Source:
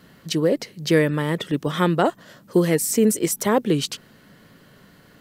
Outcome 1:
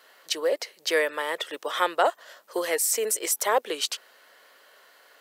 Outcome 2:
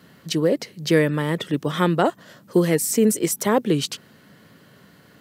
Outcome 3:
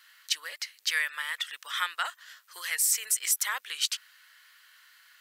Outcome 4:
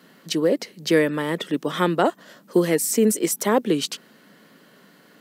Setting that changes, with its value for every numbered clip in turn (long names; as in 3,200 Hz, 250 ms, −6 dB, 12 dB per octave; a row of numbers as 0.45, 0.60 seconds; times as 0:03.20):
high-pass filter, corner frequency: 530, 75, 1,400, 190 Hertz